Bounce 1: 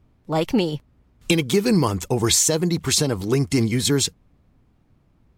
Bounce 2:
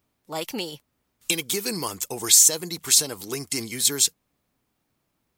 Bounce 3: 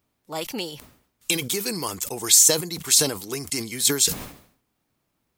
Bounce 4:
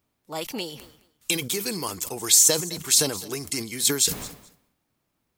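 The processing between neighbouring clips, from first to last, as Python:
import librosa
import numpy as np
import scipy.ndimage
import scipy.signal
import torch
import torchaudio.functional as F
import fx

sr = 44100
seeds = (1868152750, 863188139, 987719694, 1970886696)

y1 = fx.riaa(x, sr, side='recording')
y1 = y1 * 10.0 ** (-7.0 / 20.0)
y2 = fx.sustainer(y1, sr, db_per_s=100.0)
y3 = fx.echo_feedback(y2, sr, ms=213, feedback_pct=16, wet_db=-18.5)
y3 = y3 * 10.0 ** (-1.5 / 20.0)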